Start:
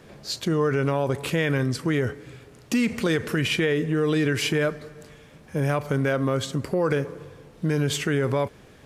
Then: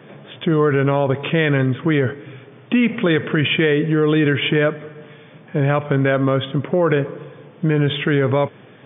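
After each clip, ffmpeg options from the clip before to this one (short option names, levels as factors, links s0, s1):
-af "afftfilt=real='re*between(b*sr/4096,100,3600)':imag='im*between(b*sr/4096,100,3600)':win_size=4096:overlap=0.75,volume=2.11"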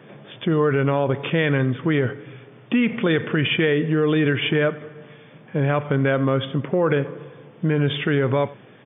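-af "aecho=1:1:89:0.1,volume=0.708"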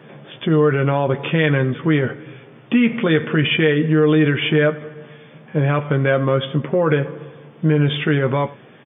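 -filter_complex "[0:a]asplit=2[s0][s1];[s1]adelay=13,volume=0.447[s2];[s0][s2]amix=inputs=2:normalize=0,volume=1.26"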